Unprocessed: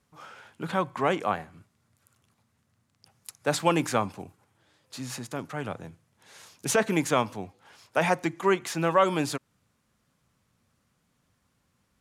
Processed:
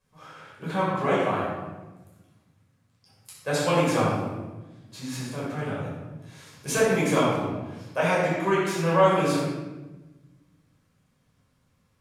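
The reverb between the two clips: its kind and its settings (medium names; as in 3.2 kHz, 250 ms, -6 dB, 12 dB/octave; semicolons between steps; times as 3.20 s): simulated room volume 710 m³, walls mixed, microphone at 5.4 m; trim -9 dB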